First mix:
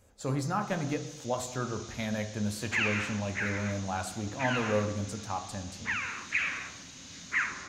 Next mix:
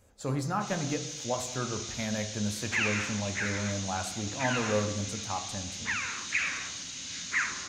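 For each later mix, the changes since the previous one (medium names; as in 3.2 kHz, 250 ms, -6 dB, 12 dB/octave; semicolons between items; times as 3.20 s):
first sound +9.0 dB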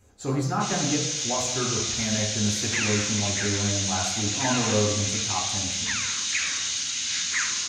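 speech: send +9.0 dB; first sound +11.5 dB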